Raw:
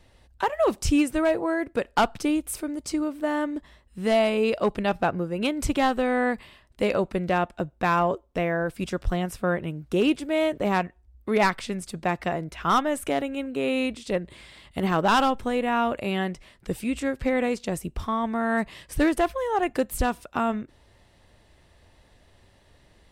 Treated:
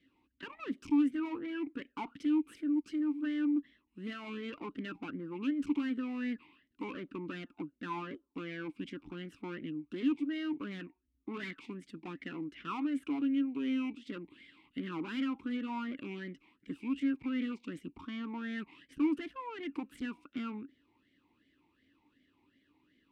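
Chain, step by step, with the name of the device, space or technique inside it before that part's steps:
talk box (tube saturation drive 29 dB, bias 0.75; formant filter swept between two vowels i-u 2.7 Hz)
level +6.5 dB

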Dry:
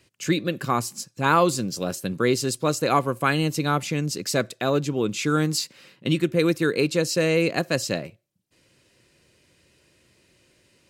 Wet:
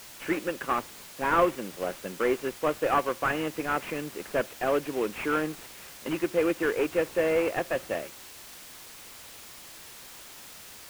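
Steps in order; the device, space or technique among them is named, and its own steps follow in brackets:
army field radio (band-pass filter 390–3,000 Hz; variable-slope delta modulation 16 kbit/s; white noise bed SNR 14 dB)
high-shelf EQ 8,600 Hz −5 dB

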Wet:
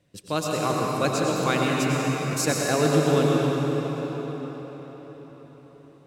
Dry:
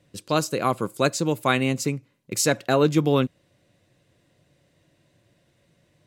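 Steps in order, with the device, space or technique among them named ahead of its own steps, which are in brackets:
cathedral (convolution reverb RT60 5.2 s, pre-delay 88 ms, DRR −3 dB)
level −4.5 dB

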